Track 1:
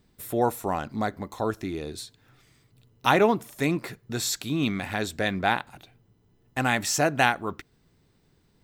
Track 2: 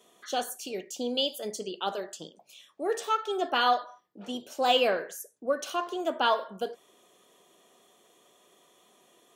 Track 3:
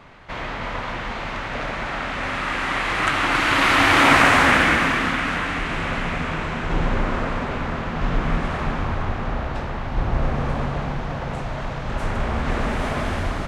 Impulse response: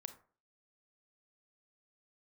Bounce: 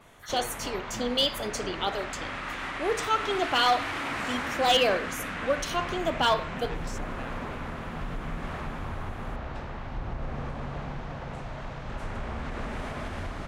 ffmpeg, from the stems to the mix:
-filter_complex "[0:a]afwtdn=0.0126,acompressor=threshold=0.0251:ratio=6,volume=0.473[s0];[1:a]adynamicequalizer=threshold=0.00794:dfrequency=4400:dqfactor=0.84:tfrequency=4400:tqfactor=0.84:attack=5:release=100:ratio=0.375:range=2.5:mode=boostabove:tftype=bell,volume=0.841,asplit=2[s1][s2];[s2]volume=0.562[s3];[2:a]volume=0.335[s4];[s0][s4]amix=inputs=2:normalize=0,asoftclip=type=tanh:threshold=0.178,alimiter=level_in=1.12:limit=0.0631:level=0:latency=1:release=107,volume=0.891,volume=1[s5];[3:a]atrim=start_sample=2205[s6];[s3][s6]afir=irnorm=-1:irlink=0[s7];[s1][s5][s7]amix=inputs=3:normalize=0,volume=5.96,asoftclip=hard,volume=0.168"

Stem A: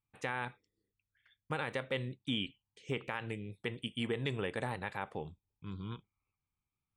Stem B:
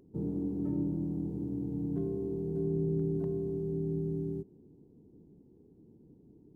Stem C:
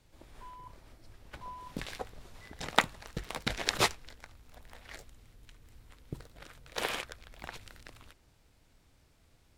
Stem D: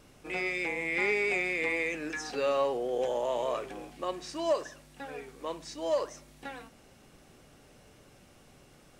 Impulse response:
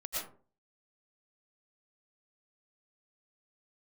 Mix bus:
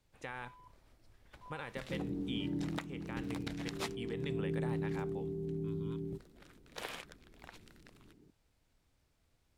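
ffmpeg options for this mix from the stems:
-filter_complex "[0:a]volume=0.447[s0];[1:a]adelay=1750,volume=0.562[s1];[2:a]volume=0.335[s2];[s0][s1][s2]amix=inputs=3:normalize=0,alimiter=limit=0.0668:level=0:latency=1:release=404"

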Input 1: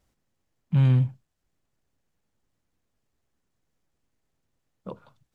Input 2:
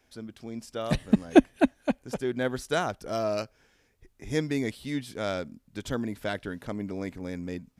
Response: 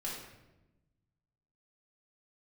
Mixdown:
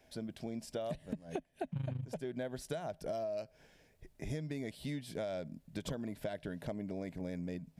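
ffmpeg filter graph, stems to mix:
-filter_complex "[0:a]tremolo=f=26:d=0.857,adelay=1000,volume=1.06[s0];[1:a]equalizer=f=160:t=o:w=0.33:g=10,equalizer=f=630:t=o:w=0.33:g=10,equalizer=f=1250:t=o:w=0.33:g=-9,equalizer=f=6300:t=o:w=0.33:g=-3,acompressor=threshold=0.0631:ratio=6,volume=1[s1];[s0][s1]amix=inputs=2:normalize=0,acompressor=threshold=0.0141:ratio=6"

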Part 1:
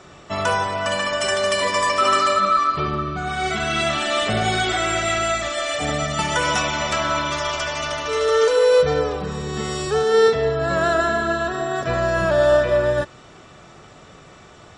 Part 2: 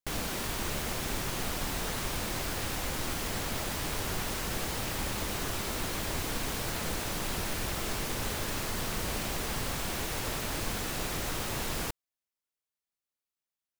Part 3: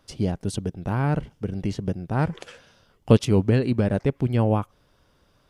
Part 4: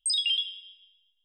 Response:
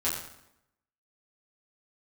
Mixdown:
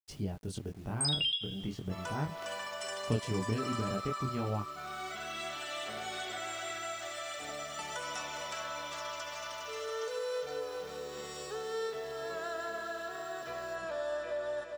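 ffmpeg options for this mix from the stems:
-filter_complex "[0:a]bass=f=250:g=-14,treble=f=4000:g=3,adelay=1600,volume=0.158,asplit=2[s0][s1];[s1]volume=0.447[s2];[1:a]afwtdn=0.00891,aderivative,adelay=1850,volume=0.316,asplit=2[s3][s4];[s4]volume=0.2[s5];[2:a]bandreject=f=520:w=12,flanger=delay=19.5:depth=7.9:speed=0.42,acrusher=bits=8:mix=0:aa=0.000001,volume=0.596[s6];[3:a]adelay=950,volume=1.26[s7];[s2][s5]amix=inputs=2:normalize=0,aecho=0:1:407|814|1221|1628|2035|2442:1|0.46|0.212|0.0973|0.0448|0.0206[s8];[s0][s3][s6][s7][s8]amix=inputs=5:normalize=0,acompressor=threshold=0.00891:ratio=1.5"

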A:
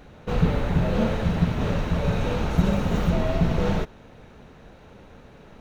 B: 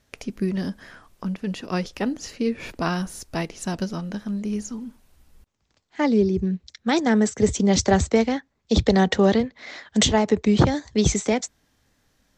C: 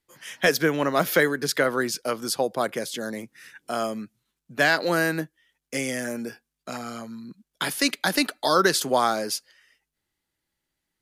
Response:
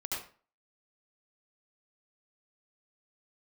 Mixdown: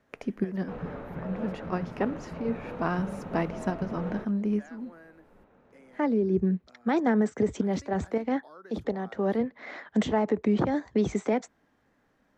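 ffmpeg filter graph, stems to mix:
-filter_complex "[0:a]acontrast=61,adelay=400,volume=0.141[s0];[1:a]alimiter=limit=0.168:level=0:latency=1:release=165,volume=1.19[s1];[2:a]acompressor=threshold=0.00631:ratio=1.5,volume=0.112,asplit=2[s2][s3];[s3]apad=whole_len=545716[s4];[s1][s4]sidechaincompress=threshold=0.00158:ratio=8:attack=22:release=106[s5];[s0][s5][s2]amix=inputs=3:normalize=0,acrossover=split=160 2100:gain=0.224 1 0.126[s6][s7][s8];[s6][s7][s8]amix=inputs=3:normalize=0"

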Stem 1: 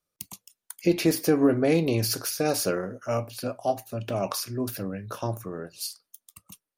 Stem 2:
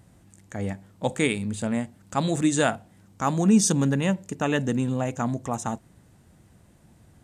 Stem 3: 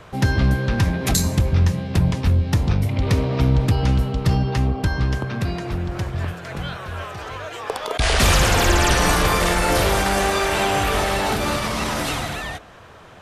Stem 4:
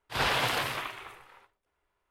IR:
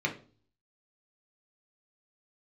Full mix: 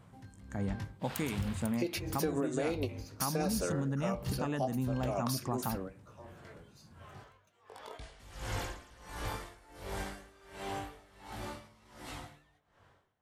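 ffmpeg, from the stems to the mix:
-filter_complex "[0:a]highpass=310,adelay=950,volume=0.668,asplit=2[s0][s1];[s1]volume=0.0668[s2];[1:a]equalizer=f=125:t=o:w=1:g=8,equalizer=f=250:t=o:w=1:g=5,equalizer=f=1000:t=o:w=1:g=7,alimiter=limit=0.251:level=0:latency=1:release=440,volume=0.299,asplit=2[s3][s4];[2:a]flanger=delay=19:depth=2:speed=0.34,aeval=exprs='val(0)*pow(10,-22*(0.5-0.5*cos(2*PI*1.4*n/s))/20)':c=same,volume=0.158,asplit=2[s5][s6];[s6]volume=0.133[s7];[3:a]adelay=900,volume=0.126[s8];[s4]apad=whole_len=340515[s9];[s0][s9]sidechaingate=range=0.0224:threshold=0.00355:ratio=16:detection=peak[s10];[4:a]atrim=start_sample=2205[s11];[s2][s7]amix=inputs=2:normalize=0[s12];[s12][s11]afir=irnorm=-1:irlink=0[s13];[s10][s3][s5][s8][s13]amix=inputs=5:normalize=0,acompressor=threshold=0.0355:ratio=6"

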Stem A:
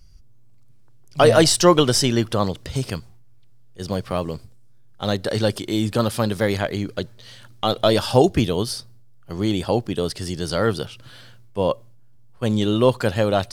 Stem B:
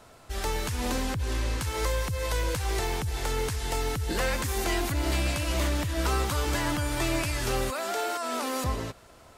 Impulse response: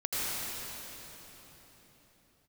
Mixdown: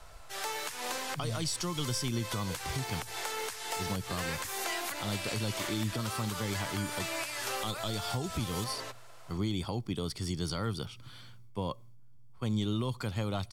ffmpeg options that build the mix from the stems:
-filter_complex "[0:a]aecho=1:1:0.9:0.48,volume=0.422[s0];[1:a]highpass=610,volume=0.944[s1];[s0][s1]amix=inputs=2:normalize=0,acrossover=split=170|3000[s2][s3][s4];[s3]acompressor=threshold=0.0355:ratio=6[s5];[s2][s5][s4]amix=inputs=3:normalize=0,alimiter=limit=0.0708:level=0:latency=1:release=346"

